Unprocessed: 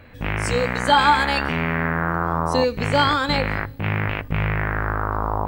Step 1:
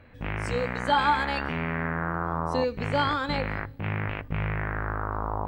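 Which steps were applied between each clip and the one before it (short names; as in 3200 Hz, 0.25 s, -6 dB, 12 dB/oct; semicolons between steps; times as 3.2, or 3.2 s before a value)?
high shelf 5100 Hz -11 dB; gain -6.5 dB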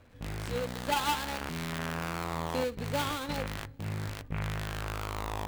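switching dead time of 0.22 ms; gain -5 dB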